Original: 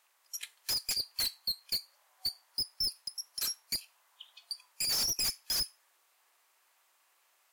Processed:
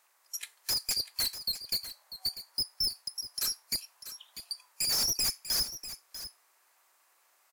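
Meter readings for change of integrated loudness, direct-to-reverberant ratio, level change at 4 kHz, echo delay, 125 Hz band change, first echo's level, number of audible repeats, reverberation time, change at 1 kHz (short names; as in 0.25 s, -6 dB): +2.0 dB, none, +2.0 dB, 0.644 s, +3.0 dB, -12.5 dB, 1, none, +3.0 dB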